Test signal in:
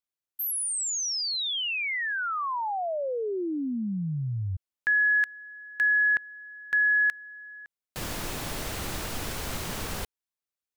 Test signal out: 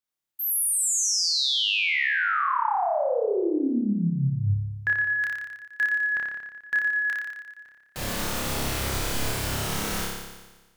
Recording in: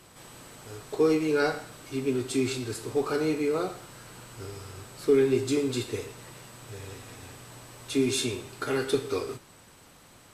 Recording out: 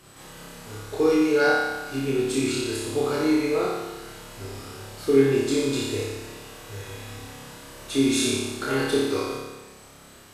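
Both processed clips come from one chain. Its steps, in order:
flutter between parallel walls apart 5 metres, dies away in 1.2 s

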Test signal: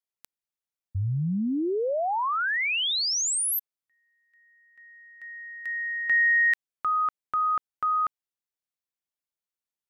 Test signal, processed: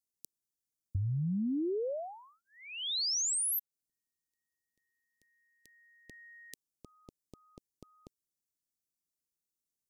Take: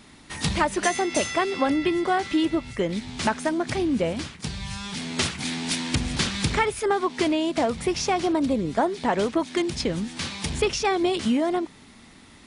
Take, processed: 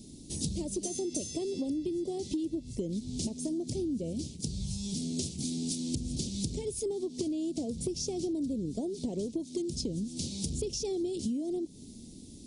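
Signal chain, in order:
Chebyshev band-stop filter 340–6,000 Hz, order 2
parametric band 920 Hz −4.5 dB 0.64 octaves
downward compressor 6 to 1, threshold −35 dBFS
level +3.5 dB

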